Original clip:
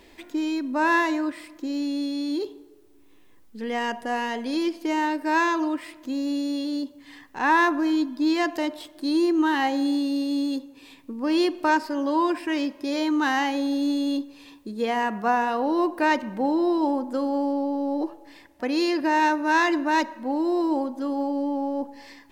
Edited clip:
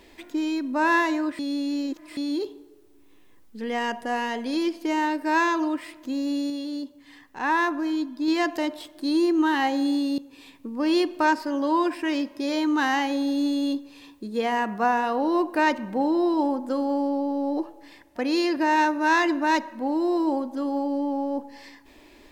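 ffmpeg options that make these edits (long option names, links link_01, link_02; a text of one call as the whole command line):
ffmpeg -i in.wav -filter_complex "[0:a]asplit=6[link_01][link_02][link_03][link_04][link_05][link_06];[link_01]atrim=end=1.392[link_07];[link_02]atrim=start=1.388:end=2.172,asetpts=PTS-STARTPTS,areverse[link_08];[link_03]atrim=start=2.168:end=6.502[link_09];[link_04]atrim=start=6.498:end=8.282,asetpts=PTS-STARTPTS,volume=-3.5dB[link_10];[link_05]atrim=start=8.278:end=10.182[link_11];[link_06]atrim=start=10.618[link_12];[link_07][link_08]acrossfade=duration=0.004:curve1=hsin:curve2=hsin[link_13];[link_13][link_09]acrossfade=duration=0.004:curve1=hsin:curve2=hsin[link_14];[link_14][link_10]acrossfade=duration=0.004:curve1=hsin:curve2=hsin[link_15];[link_15][link_11]acrossfade=duration=0.004:curve1=hsin:curve2=hsin[link_16];[link_16][link_12]acrossfade=duration=0.004:curve1=hsin:curve2=hsin" out.wav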